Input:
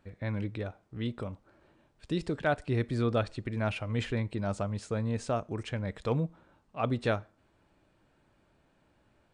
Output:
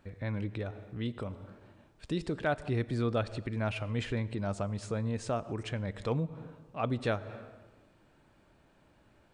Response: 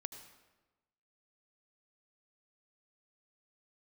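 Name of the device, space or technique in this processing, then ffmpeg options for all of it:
ducked reverb: -filter_complex "[0:a]asplit=3[s0][s1][s2];[1:a]atrim=start_sample=2205[s3];[s1][s3]afir=irnorm=-1:irlink=0[s4];[s2]apad=whole_len=411633[s5];[s4][s5]sidechaincompress=threshold=0.00631:ratio=4:attack=6.8:release=136,volume=1.78[s6];[s0][s6]amix=inputs=2:normalize=0,volume=0.668"

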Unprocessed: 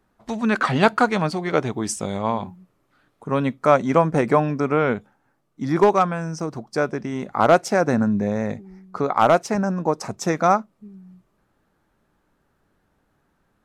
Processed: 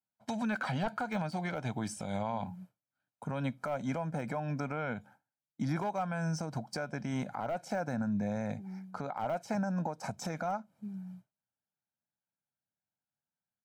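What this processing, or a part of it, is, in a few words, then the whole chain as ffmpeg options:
podcast mastering chain: -af "highshelf=f=9800:g=4,aecho=1:1:1.3:0.69,agate=range=0.0224:threshold=0.00794:ratio=3:detection=peak,highpass=f=94:w=0.5412,highpass=f=94:w=1.3066,deesser=0.8,acompressor=threshold=0.0316:ratio=4,alimiter=level_in=1.06:limit=0.0631:level=0:latency=1:release=142,volume=0.944" -ar 48000 -c:a libmp3lame -b:a 112k

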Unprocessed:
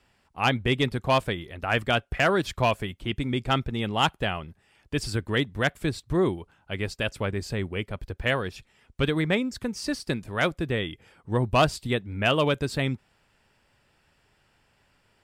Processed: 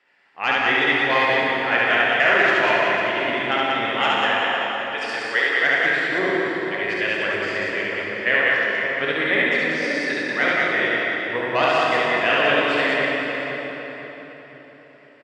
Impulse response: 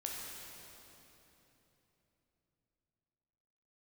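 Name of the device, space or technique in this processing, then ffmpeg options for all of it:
station announcement: -filter_complex "[0:a]asettb=1/sr,asplit=3[s0][s1][s2];[s0]atrim=end=4.014[s3];[s1]atrim=start=4.01:end=5.63,asetpts=PTS-STARTPTS,afade=t=in:d=0.004:c=qsin,afade=t=out:st=1.616:d=0.004:c=qsin,highpass=f=400:w=0.5412,highpass=f=400:w=1.3066[s4];[s2]atrim=start=5.626[s5];[s3][s4]acrossfade=d=0.004:c1=hsin:c2=qsin[s6];[s6][s5]acrossfade=d=0.004:c1=qsin:c2=hsin,highpass=360,lowpass=4500,equalizer=f=1900:t=o:w=0.51:g=11,aecho=1:1:69.97|189.5:0.891|0.794[s7];[1:a]atrim=start_sample=2205[s8];[s7][s8]afir=irnorm=-1:irlink=0,asplit=2[s9][s10];[s10]adelay=509,lowpass=f=3200:p=1,volume=0.335,asplit=2[s11][s12];[s12]adelay=509,lowpass=f=3200:p=1,volume=0.43,asplit=2[s13][s14];[s14]adelay=509,lowpass=f=3200:p=1,volume=0.43,asplit=2[s15][s16];[s16]adelay=509,lowpass=f=3200:p=1,volume=0.43,asplit=2[s17][s18];[s18]adelay=509,lowpass=f=3200:p=1,volume=0.43[s19];[s9][s11][s13][s15][s17][s19]amix=inputs=6:normalize=0,volume=1.19"

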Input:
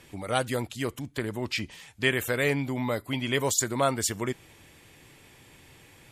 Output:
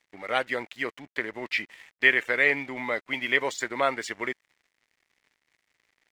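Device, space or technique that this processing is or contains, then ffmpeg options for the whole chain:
pocket radio on a weak battery: -af "highpass=340,lowpass=3800,aeval=exprs='sgn(val(0))*max(abs(val(0))-0.00266,0)':c=same,equalizer=f=2000:t=o:w=0.54:g=11"

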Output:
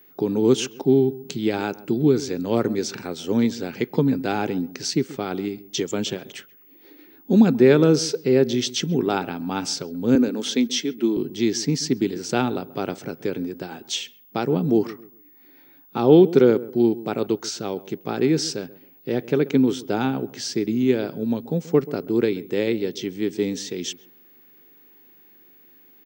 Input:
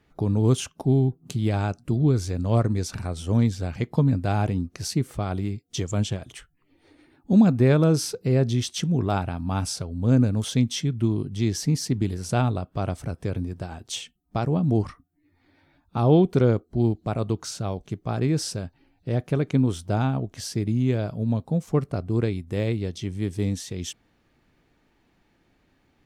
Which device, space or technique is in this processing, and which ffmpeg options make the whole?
old television with a line whistle: -filter_complex "[0:a]highpass=f=190:w=0.5412,highpass=f=190:w=1.3066,equalizer=f=200:t=q:w=4:g=-5,equalizer=f=400:t=q:w=4:g=4,equalizer=f=650:t=q:w=4:g=-9,equalizer=f=1100:t=q:w=4:g=-7,lowpass=f=6900:w=0.5412,lowpass=f=6900:w=1.3066,aeval=exprs='val(0)+0.00158*sin(2*PI*15625*n/s)':c=same,asettb=1/sr,asplit=3[s0][s1][s2];[s0]atrim=end=10.154[s3];[s1]atrim=start=10.15:end=11.17,asetpts=PTS-STARTPTS,afade=t=in:d=0.004:c=qsin,afade=t=out:st=1.016:d=0.004:c=qsin,highpass=f=220:w=0.5412,highpass=f=220:w=1.3066[s4];[s2]atrim=start=11.166[s5];[s3][s4]acrossfade=d=0.004:c1=hsin:c2=qsin[s6];[s6][s5]acrossfade=d=0.004:c1=qsin:c2=hsin,asplit=2[s7][s8];[s8]adelay=133,lowpass=f=1100:p=1,volume=0.141,asplit=2[s9][s10];[s10]adelay=133,lowpass=f=1100:p=1,volume=0.29,asplit=2[s11][s12];[s12]adelay=133,lowpass=f=1100:p=1,volume=0.29[s13];[s7][s9][s11][s13]amix=inputs=4:normalize=0,volume=2"

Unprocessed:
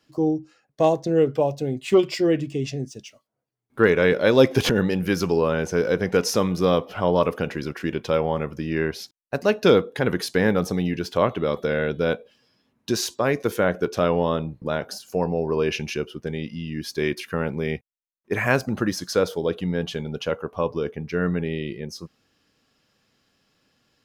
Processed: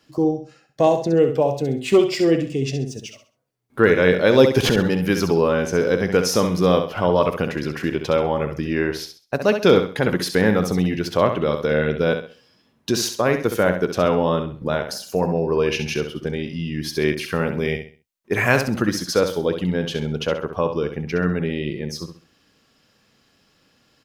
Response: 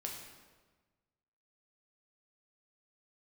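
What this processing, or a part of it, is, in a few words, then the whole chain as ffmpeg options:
parallel compression: -filter_complex "[0:a]asplit=2[s0][s1];[s1]acompressor=threshold=0.0251:ratio=6,volume=0.75[s2];[s0][s2]amix=inputs=2:normalize=0,aecho=1:1:66|132|198|264:0.398|0.119|0.0358|0.0107,asettb=1/sr,asplit=3[s3][s4][s5];[s3]atrim=end=17.154[s6];[s4]atrim=start=17.15:end=18.83,asetpts=PTS-STARTPTS,afade=t=in:d=0.004:c=qsin,afade=t=out:st=1.676:d=0.004:c=qsin,adynamicequalizer=threshold=0.0178:dfrequency=2200:dqfactor=0.7:tfrequency=2200:tqfactor=0.7:attack=5:release=100:ratio=0.375:range=2:mode=boostabove:tftype=highshelf[s7];[s5]atrim=start=18.826[s8];[s6][s7]acrossfade=d=0.004:c1=hsin:c2=qsin[s9];[s9][s8]acrossfade=d=0.004:c1=qsin:c2=hsin,volume=1.12"

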